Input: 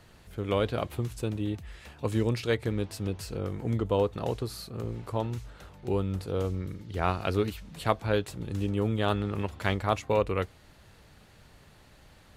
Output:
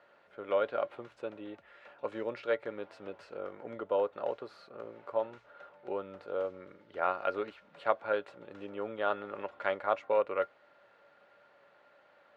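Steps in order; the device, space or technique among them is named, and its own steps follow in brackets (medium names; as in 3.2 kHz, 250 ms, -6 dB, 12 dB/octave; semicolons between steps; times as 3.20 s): tin-can telephone (band-pass 520–2000 Hz; small resonant body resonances 570/1400 Hz, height 13 dB, ringing for 90 ms); trim -2.5 dB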